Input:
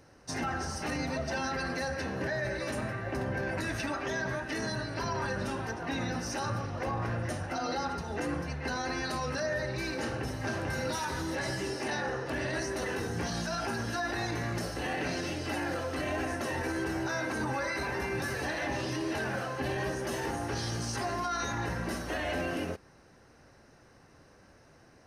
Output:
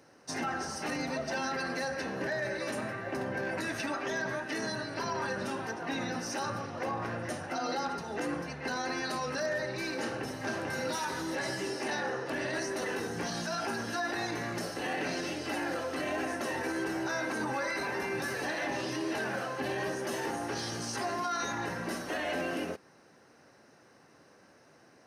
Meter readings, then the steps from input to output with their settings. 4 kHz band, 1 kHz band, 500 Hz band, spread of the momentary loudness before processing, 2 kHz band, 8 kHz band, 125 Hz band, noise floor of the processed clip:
0.0 dB, 0.0 dB, 0.0 dB, 2 LU, 0.0 dB, 0.0 dB, -7.5 dB, -60 dBFS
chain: HPF 180 Hz 12 dB/oct; wavefolder -24.5 dBFS

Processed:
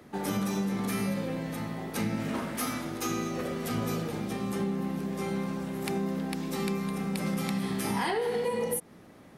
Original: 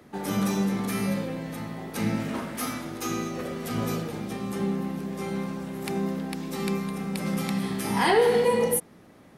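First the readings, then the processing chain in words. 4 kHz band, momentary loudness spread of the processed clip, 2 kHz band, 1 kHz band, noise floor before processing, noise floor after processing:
-3.5 dB, 4 LU, -4.5 dB, -4.5 dB, -52 dBFS, -52 dBFS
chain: compressor 12:1, threshold -26 dBFS, peak gain reduction 11 dB

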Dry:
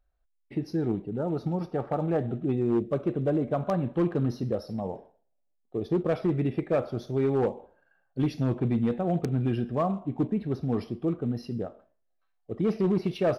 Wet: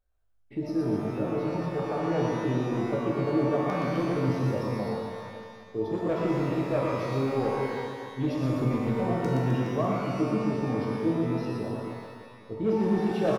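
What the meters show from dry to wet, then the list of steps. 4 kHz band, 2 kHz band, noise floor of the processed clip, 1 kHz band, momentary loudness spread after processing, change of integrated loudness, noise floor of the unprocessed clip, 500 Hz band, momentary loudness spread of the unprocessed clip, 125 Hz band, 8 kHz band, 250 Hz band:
+4.0 dB, +6.5 dB, -49 dBFS, +3.5 dB, 10 LU, +0.5 dB, -73 dBFS, +0.5 dB, 9 LU, 0.0 dB, n/a, +0.5 dB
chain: notch 4500 Hz, Q 23; reverse bouncing-ball echo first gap 0.12 s, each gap 1.15×, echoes 5; shimmer reverb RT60 1.1 s, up +12 st, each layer -8 dB, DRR -0.5 dB; gain -5 dB

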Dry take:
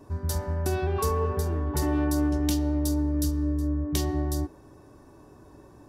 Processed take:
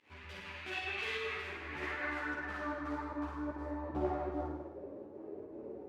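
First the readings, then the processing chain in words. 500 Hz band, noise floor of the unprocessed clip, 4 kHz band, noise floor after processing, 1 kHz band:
-9.0 dB, -52 dBFS, -6.5 dB, -51 dBFS, -6.0 dB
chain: median filter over 41 samples; in parallel at -0.5 dB: limiter -25.5 dBFS, peak gain reduction 9 dB; on the sum: band-pass sweep 2700 Hz -> 480 Hz, 1.16–4.97; pump 154 bpm, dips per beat 1, -19 dB, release 95 ms; on a send: flutter echo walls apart 8.9 m, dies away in 0.96 s; on the sum: ensemble effect; gain +7.5 dB

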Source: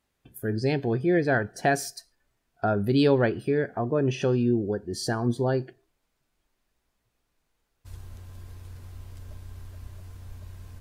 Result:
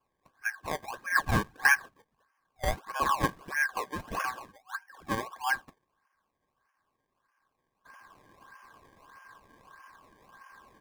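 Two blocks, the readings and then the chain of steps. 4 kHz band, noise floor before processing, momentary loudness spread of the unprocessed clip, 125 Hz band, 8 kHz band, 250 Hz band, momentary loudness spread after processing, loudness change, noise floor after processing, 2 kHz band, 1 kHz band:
-3.5 dB, -77 dBFS, 22 LU, -12.0 dB, -1.5 dB, -14.5 dB, 13 LU, -5.0 dB, -81 dBFS, +5.0 dB, +1.0 dB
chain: FFT band-pass 750–3500 Hz; decimation with a swept rate 22×, swing 100% 1.6 Hz; small resonant body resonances 1100/1600 Hz, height 17 dB, ringing for 45 ms; gain +1.5 dB

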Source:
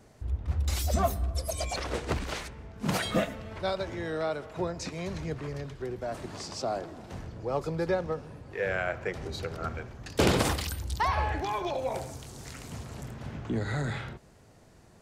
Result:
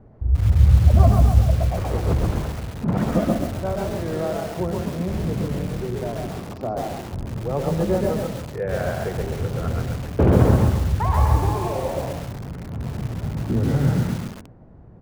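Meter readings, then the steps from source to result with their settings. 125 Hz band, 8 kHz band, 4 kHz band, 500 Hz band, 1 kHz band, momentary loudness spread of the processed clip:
+15.0 dB, -1.0 dB, -2.0 dB, +7.0 dB, +5.0 dB, 14 LU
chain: LPF 1100 Hz 12 dB/oct; low shelf 230 Hz +11.5 dB; notches 50/100/150/200/250/300/350 Hz; frequency-shifting echo 0.124 s, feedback 33%, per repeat +38 Hz, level -4 dB; lo-fi delay 0.137 s, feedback 35%, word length 6-bit, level -4 dB; gain +2.5 dB

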